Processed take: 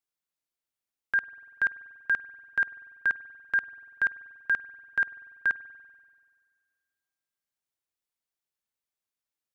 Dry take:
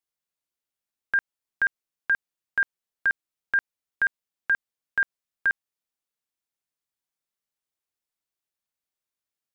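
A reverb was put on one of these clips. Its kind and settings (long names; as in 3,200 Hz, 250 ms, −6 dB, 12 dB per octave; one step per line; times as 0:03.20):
spring reverb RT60 1.8 s, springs 48 ms, chirp 70 ms, DRR 17 dB
level −2.5 dB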